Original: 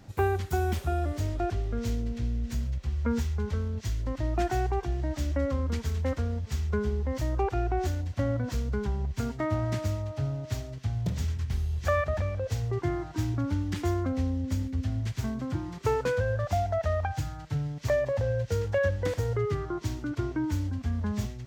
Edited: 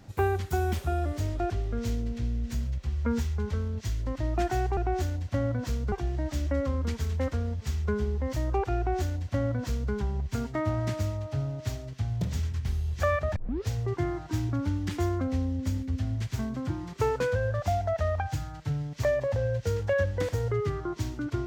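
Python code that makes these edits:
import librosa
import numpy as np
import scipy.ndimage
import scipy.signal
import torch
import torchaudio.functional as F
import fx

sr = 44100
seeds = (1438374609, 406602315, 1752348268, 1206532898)

y = fx.edit(x, sr, fx.duplicate(start_s=7.62, length_s=1.15, to_s=4.77),
    fx.tape_start(start_s=12.21, length_s=0.32), tone=tone)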